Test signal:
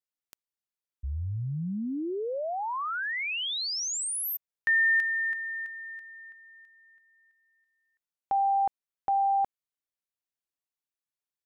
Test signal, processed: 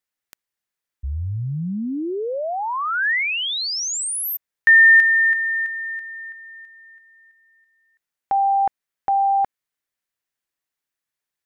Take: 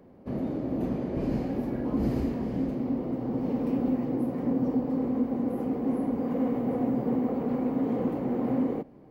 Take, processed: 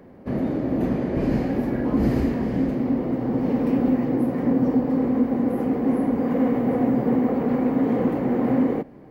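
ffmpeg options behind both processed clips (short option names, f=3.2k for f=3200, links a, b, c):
-af "equalizer=f=1.8k:t=o:w=0.7:g=6,volume=6.5dB"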